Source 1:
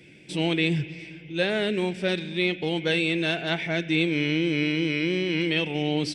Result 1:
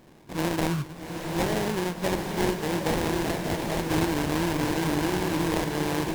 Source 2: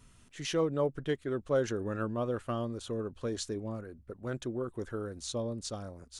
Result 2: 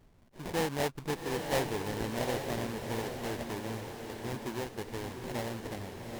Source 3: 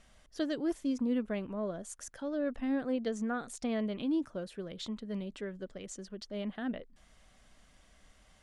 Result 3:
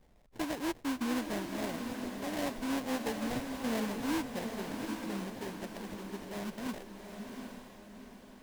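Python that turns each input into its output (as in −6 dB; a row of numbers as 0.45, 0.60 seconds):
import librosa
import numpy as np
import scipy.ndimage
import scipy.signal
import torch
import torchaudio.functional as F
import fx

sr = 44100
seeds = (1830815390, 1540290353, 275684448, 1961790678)

y = fx.sample_hold(x, sr, seeds[0], rate_hz=1300.0, jitter_pct=20)
y = fx.vibrato(y, sr, rate_hz=2.5, depth_cents=7.6)
y = fx.echo_diffused(y, sr, ms=788, feedback_pct=46, wet_db=-5)
y = F.gain(torch.from_numpy(y), -2.5).numpy()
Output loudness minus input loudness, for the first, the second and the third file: −2.0, −1.0, −1.0 LU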